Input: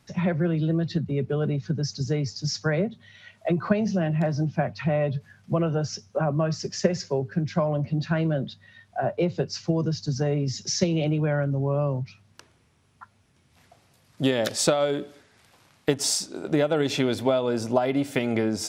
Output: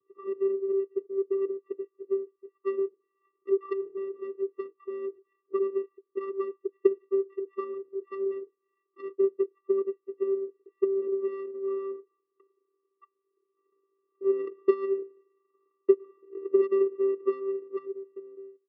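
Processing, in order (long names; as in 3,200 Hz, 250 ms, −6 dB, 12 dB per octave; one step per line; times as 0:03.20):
fade-out on the ending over 1.65 s
Butterworth low-pass 1,500 Hz 72 dB per octave
harmonic generator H 7 −22 dB, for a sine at −6 dBFS
channel vocoder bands 8, square 390 Hz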